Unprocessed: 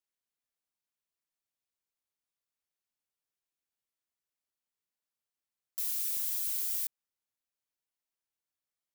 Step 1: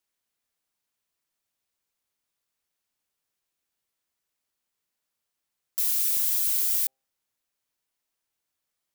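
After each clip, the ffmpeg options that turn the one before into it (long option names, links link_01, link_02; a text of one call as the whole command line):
ffmpeg -i in.wav -af "bandreject=frequency=132.4:width_type=h:width=4,bandreject=frequency=264.8:width_type=h:width=4,bandreject=frequency=397.2:width_type=h:width=4,bandreject=frequency=529.6:width_type=h:width=4,bandreject=frequency=662:width_type=h:width=4,bandreject=frequency=794.4:width_type=h:width=4,volume=8.5dB" out.wav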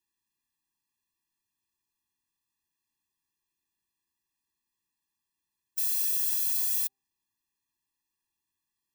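ffmpeg -i in.wav -af "afftfilt=real='re*eq(mod(floor(b*sr/1024/400),2),0)':imag='im*eq(mod(floor(b*sr/1024/400),2),0)':win_size=1024:overlap=0.75" out.wav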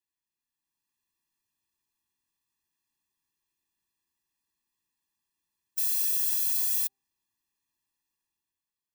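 ffmpeg -i in.wav -af "dynaudnorm=framelen=130:gausssize=11:maxgain=8dB,volume=-7dB" out.wav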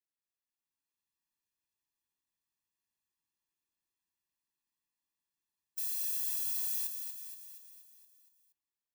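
ffmpeg -i in.wav -af "aecho=1:1:236|472|708|944|1180|1416|1652:0.447|0.255|0.145|0.0827|0.0472|0.0269|0.0153,volume=-8.5dB" out.wav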